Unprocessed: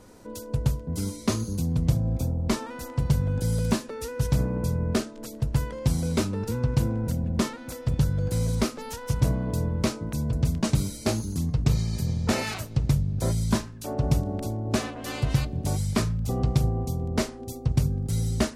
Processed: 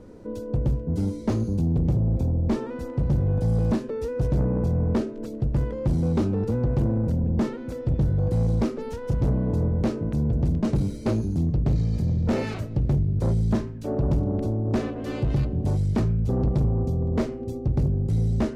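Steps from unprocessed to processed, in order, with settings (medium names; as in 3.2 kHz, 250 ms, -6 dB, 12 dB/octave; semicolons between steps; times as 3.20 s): tracing distortion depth 0.023 ms; low-pass 1.8 kHz 6 dB/octave; resonant low shelf 610 Hz +6 dB, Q 1.5; de-hum 129.1 Hz, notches 24; saturation -17 dBFS, distortion -10 dB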